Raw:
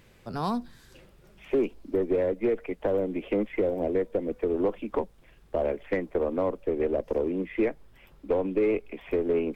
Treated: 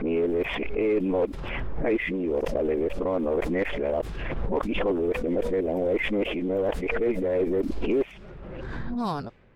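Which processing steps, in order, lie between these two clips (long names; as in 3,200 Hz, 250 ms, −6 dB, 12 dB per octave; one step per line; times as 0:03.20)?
played backwards from end to start
low-pass that shuts in the quiet parts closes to 1,200 Hz, open at −23 dBFS
background raised ahead of every attack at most 22 dB per second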